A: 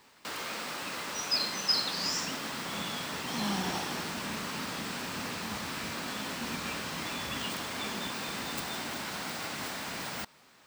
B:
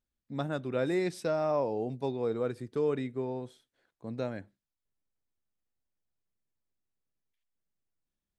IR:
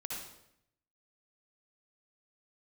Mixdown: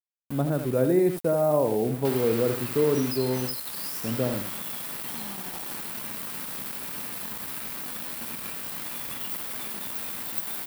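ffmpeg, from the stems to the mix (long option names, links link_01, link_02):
-filter_complex "[0:a]equalizer=frequency=8800:width_type=o:width=1:gain=-6,acompressor=threshold=-35dB:ratio=6,adelay=1800,volume=0dB[link_01];[1:a]tiltshelf=frequency=1400:gain=9.5,volume=-0.5dB,asplit=2[link_02][link_03];[link_03]volume=-8.5dB,aecho=0:1:79|158|237:1|0.16|0.0256[link_04];[link_01][link_02][link_04]amix=inputs=3:normalize=0,aeval=exprs='val(0)*gte(abs(val(0)),0.0133)':channel_layout=same,aexciter=amount=5:drive=3.4:freq=8700"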